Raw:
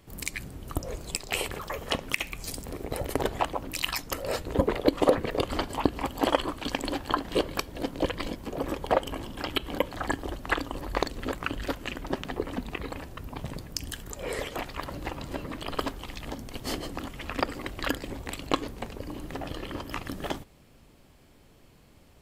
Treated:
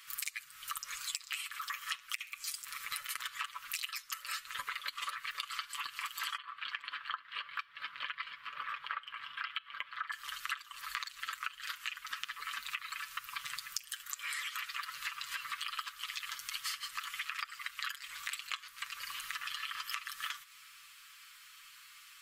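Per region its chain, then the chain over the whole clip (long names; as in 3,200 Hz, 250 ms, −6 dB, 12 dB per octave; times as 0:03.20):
0:06.37–0:10.12: high-pass filter 120 Hz 6 dB per octave + high-frequency loss of the air 420 metres
whole clip: elliptic high-pass filter 1,200 Hz, stop band 40 dB; comb filter 6.9 ms, depth 67%; downward compressor 12 to 1, threshold −45 dBFS; level +9 dB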